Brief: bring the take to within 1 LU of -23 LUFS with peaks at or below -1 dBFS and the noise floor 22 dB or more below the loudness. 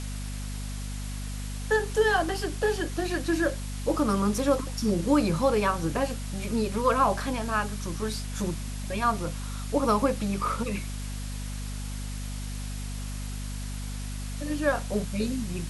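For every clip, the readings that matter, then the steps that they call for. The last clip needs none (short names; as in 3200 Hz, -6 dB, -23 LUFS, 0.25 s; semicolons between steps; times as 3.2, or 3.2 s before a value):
hum 50 Hz; harmonics up to 250 Hz; hum level -32 dBFS; noise floor -34 dBFS; noise floor target -51 dBFS; loudness -29.0 LUFS; peak -10.5 dBFS; loudness target -23.0 LUFS
-> notches 50/100/150/200/250 Hz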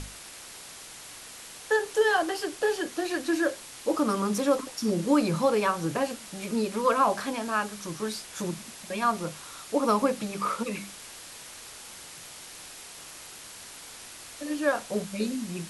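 hum none; noise floor -45 dBFS; noise floor target -50 dBFS
-> noise print and reduce 6 dB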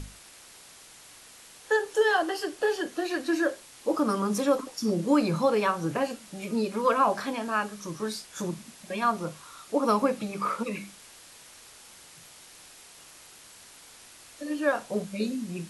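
noise floor -51 dBFS; loudness -28.0 LUFS; peak -11.5 dBFS; loudness target -23.0 LUFS
-> gain +5 dB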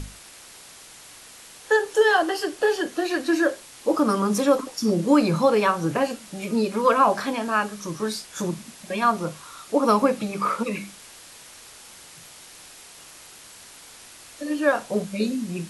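loudness -23.0 LUFS; peak -6.5 dBFS; noise floor -46 dBFS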